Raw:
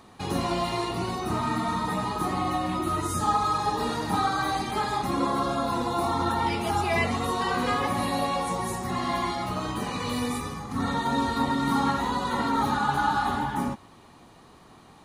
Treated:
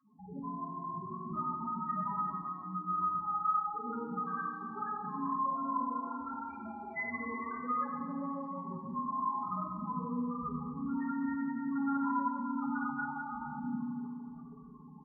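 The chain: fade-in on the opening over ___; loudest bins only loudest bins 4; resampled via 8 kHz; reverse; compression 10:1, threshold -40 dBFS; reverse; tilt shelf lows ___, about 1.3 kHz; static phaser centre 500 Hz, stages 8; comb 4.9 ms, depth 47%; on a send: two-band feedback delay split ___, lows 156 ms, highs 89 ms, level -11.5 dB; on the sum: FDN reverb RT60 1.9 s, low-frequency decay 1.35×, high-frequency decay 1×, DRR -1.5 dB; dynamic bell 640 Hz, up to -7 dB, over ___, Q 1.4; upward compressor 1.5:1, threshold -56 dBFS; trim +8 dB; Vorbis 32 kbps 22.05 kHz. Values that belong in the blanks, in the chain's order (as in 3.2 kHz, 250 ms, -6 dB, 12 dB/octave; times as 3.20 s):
0.68 s, -6.5 dB, 960 Hz, -59 dBFS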